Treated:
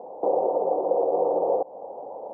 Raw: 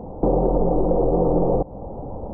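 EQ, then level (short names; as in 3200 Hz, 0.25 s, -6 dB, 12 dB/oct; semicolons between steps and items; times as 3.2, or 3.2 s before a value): Butterworth band-pass 690 Hz, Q 1.2; 0.0 dB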